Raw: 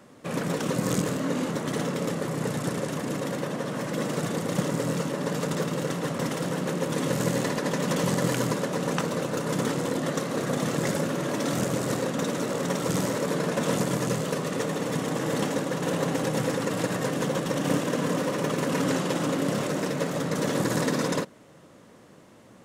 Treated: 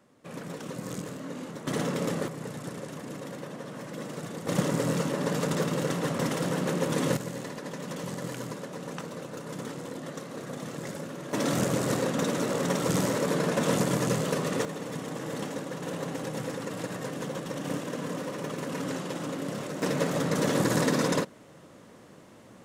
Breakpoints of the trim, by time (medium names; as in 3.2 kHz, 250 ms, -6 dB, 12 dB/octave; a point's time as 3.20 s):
-10.5 dB
from 1.67 s -1 dB
from 2.28 s -9 dB
from 4.47 s 0 dB
from 7.17 s -10.5 dB
from 11.33 s 0 dB
from 14.65 s -7.5 dB
from 19.82 s +0.5 dB